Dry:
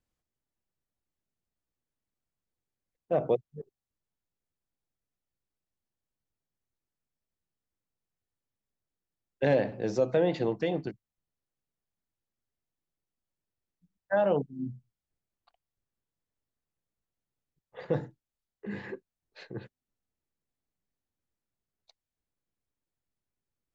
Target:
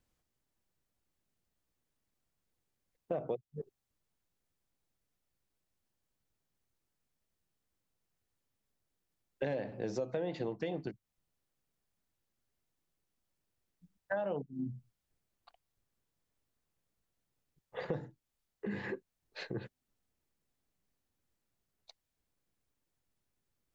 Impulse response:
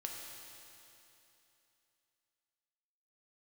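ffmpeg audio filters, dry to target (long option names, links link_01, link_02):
-af "acompressor=threshold=-41dB:ratio=4,volume=5dB"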